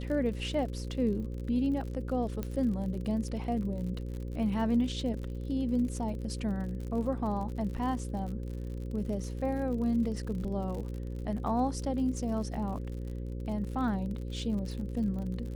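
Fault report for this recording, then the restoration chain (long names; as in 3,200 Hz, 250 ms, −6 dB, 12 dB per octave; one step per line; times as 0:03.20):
mains buzz 60 Hz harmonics 9 −37 dBFS
surface crackle 57 per second −39 dBFS
0:02.43: click −21 dBFS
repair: click removal
hum removal 60 Hz, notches 9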